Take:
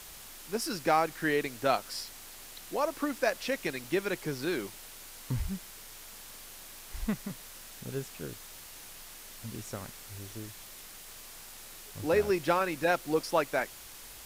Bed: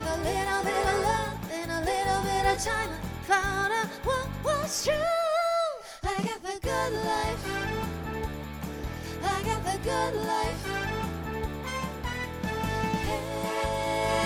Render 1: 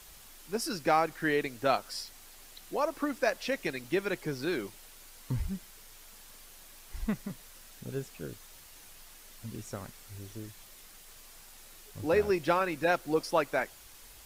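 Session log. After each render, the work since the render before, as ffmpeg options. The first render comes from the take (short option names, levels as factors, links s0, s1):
-af "afftdn=nr=6:nf=-48"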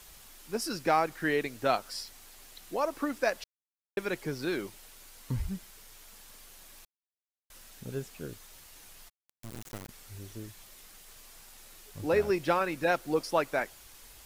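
-filter_complex "[0:a]asplit=3[s0][s1][s2];[s0]afade=t=out:st=9.08:d=0.02[s3];[s1]acrusher=bits=4:dc=4:mix=0:aa=0.000001,afade=t=in:st=9.08:d=0.02,afade=t=out:st=9.88:d=0.02[s4];[s2]afade=t=in:st=9.88:d=0.02[s5];[s3][s4][s5]amix=inputs=3:normalize=0,asplit=5[s6][s7][s8][s9][s10];[s6]atrim=end=3.44,asetpts=PTS-STARTPTS,afade=t=out:st=3.436:d=0.004:c=hsin[s11];[s7]atrim=start=3.44:end=3.97,asetpts=PTS-STARTPTS,volume=0[s12];[s8]atrim=start=3.97:end=6.85,asetpts=PTS-STARTPTS,afade=t=in:d=0.004:c=hsin,afade=t=out:st=2.876:d=0.004:c=hsin[s13];[s9]atrim=start=6.85:end=7.5,asetpts=PTS-STARTPTS,volume=0[s14];[s10]atrim=start=7.5,asetpts=PTS-STARTPTS,afade=t=in:d=0.004:c=hsin[s15];[s11][s12][s13][s14][s15]concat=n=5:v=0:a=1"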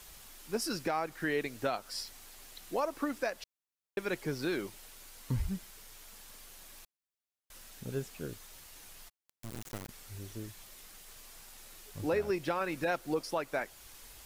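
-af "alimiter=limit=0.0794:level=0:latency=1:release=291"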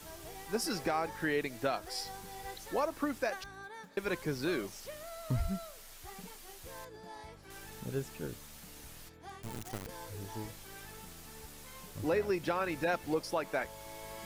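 -filter_complex "[1:a]volume=0.0944[s0];[0:a][s0]amix=inputs=2:normalize=0"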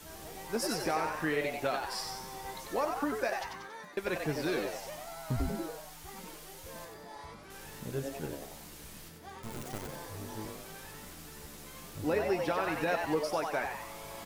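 -filter_complex "[0:a]asplit=2[s0][s1];[s1]adelay=13,volume=0.282[s2];[s0][s2]amix=inputs=2:normalize=0,asplit=7[s3][s4][s5][s6][s7][s8][s9];[s4]adelay=93,afreqshift=140,volume=0.562[s10];[s5]adelay=186,afreqshift=280,volume=0.282[s11];[s6]adelay=279,afreqshift=420,volume=0.141[s12];[s7]adelay=372,afreqshift=560,volume=0.07[s13];[s8]adelay=465,afreqshift=700,volume=0.0351[s14];[s9]adelay=558,afreqshift=840,volume=0.0176[s15];[s3][s10][s11][s12][s13][s14][s15]amix=inputs=7:normalize=0"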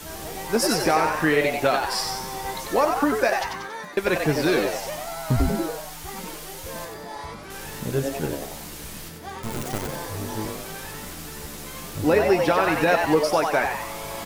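-af "volume=3.76"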